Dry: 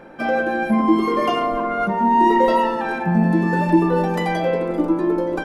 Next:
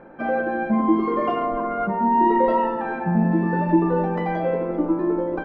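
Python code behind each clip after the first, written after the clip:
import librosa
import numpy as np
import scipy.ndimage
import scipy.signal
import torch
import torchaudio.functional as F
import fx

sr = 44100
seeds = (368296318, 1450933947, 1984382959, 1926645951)

y = scipy.signal.sosfilt(scipy.signal.butter(2, 1700.0, 'lowpass', fs=sr, output='sos'), x)
y = F.gain(torch.from_numpy(y), -2.5).numpy()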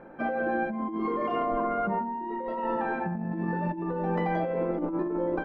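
y = fx.over_compress(x, sr, threshold_db=-24.0, ratio=-1.0)
y = F.gain(torch.from_numpy(y), -5.5).numpy()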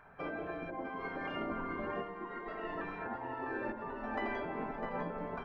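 y = fx.echo_split(x, sr, split_hz=980.0, low_ms=81, high_ms=653, feedback_pct=52, wet_db=-8.5)
y = fx.spec_gate(y, sr, threshold_db=-10, keep='weak')
y = F.gain(torch.from_numpy(y), -2.0).numpy()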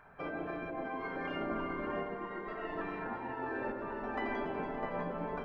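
y = fx.echo_alternate(x, sr, ms=142, hz=870.0, feedback_pct=59, wet_db=-4)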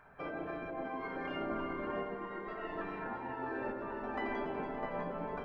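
y = fx.doubler(x, sr, ms=15.0, db=-13)
y = F.gain(torch.from_numpy(y), -1.5).numpy()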